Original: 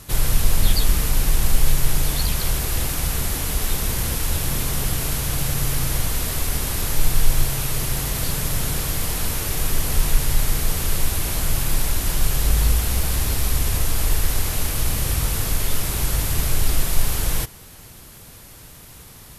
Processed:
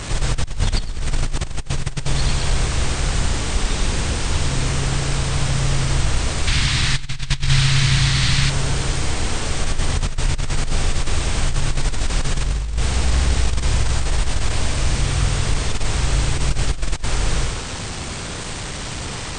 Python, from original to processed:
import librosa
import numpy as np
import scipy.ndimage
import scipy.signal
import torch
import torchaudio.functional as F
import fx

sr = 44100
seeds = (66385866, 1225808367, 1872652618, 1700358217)

y = fx.delta_mod(x, sr, bps=64000, step_db=-22.5)
y = fx.brickwall_lowpass(y, sr, high_hz=9200.0)
y = fx.high_shelf(y, sr, hz=5600.0, db=-6.5)
y = fx.echo_feedback(y, sr, ms=96, feedback_pct=31, wet_db=-3.5)
y = fx.over_compress(y, sr, threshold_db=-16.0, ratio=-0.5)
y = fx.graphic_eq_10(y, sr, hz=(125, 500, 2000, 4000), db=(7, -10, 7, 9), at=(6.47, 8.5))